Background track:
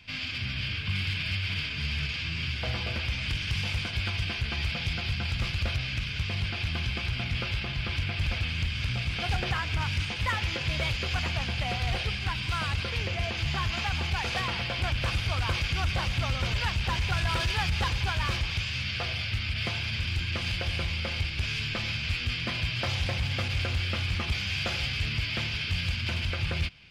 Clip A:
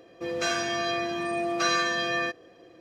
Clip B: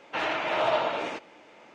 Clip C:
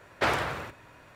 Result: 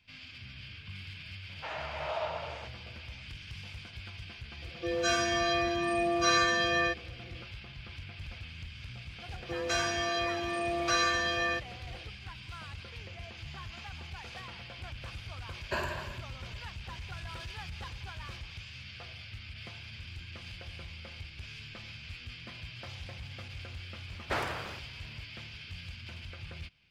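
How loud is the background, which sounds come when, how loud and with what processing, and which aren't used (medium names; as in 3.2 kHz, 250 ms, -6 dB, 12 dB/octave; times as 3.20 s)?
background track -14.5 dB
1.49 s: add B -11.5 dB + resonant low shelf 410 Hz -9 dB, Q 1.5
4.62 s: add A -0.5 dB + harmonic-percussive separation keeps harmonic
9.28 s: add A -2.5 dB + bass shelf 250 Hz -7.5 dB
15.50 s: add C -11 dB + rippled EQ curve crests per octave 1.4, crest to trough 15 dB
24.09 s: add C -7 dB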